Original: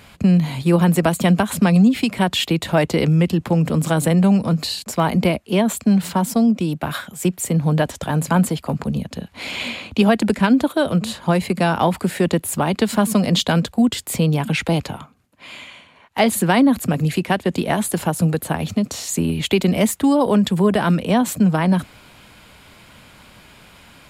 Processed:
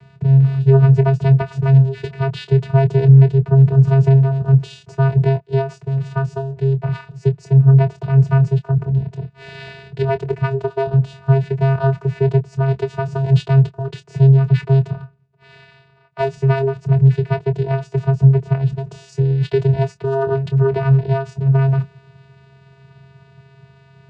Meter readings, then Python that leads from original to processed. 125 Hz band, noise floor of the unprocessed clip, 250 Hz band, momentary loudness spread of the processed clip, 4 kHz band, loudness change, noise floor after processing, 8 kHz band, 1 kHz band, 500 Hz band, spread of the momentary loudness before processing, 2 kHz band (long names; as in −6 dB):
+9.0 dB, −49 dBFS, can't be measured, 11 LU, below −10 dB, +2.5 dB, −50 dBFS, below −20 dB, −4.5 dB, +1.0 dB, 8 LU, −6.5 dB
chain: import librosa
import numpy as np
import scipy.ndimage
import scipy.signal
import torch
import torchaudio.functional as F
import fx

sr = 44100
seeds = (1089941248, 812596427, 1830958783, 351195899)

y = fx.lowpass(x, sr, hz=2900.0, slope=6)
y = fx.vocoder(y, sr, bands=8, carrier='square', carrier_hz=135.0)
y = fx.doubler(y, sr, ms=25.0, db=-11.5)
y = y * 10.0 ** (5.0 / 20.0)